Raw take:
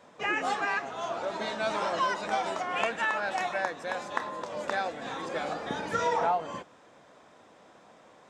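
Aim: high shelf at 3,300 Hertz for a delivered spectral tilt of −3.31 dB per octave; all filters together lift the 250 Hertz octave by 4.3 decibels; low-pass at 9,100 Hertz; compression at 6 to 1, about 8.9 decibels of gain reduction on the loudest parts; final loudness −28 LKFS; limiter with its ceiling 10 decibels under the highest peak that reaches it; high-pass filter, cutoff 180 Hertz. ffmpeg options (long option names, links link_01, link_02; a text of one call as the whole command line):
ffmpeg -i in.wav -af "highpass=180,lowpass=9100,equalizer=frequency=250:width_type=o:gain=7,highshelf=frequency=3300:gain=3.5,acompressor=threshold=-34dB:ratio=6,volume=11dB,alimiter=limit=-18dB:level=0:latency=1" out.wav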